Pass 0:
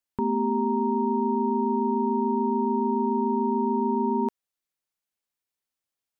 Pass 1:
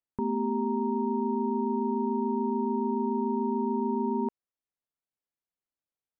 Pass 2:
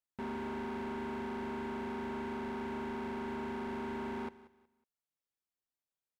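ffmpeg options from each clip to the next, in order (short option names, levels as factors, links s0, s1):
-af "lowpass=f=1000:p=1,volume=0.708"
-af "volume=53.1,asoftclip=hard,volume=0.0188,aecho=1:1:184|368|552:0.126|0.0365|0.0106,volume=0.708"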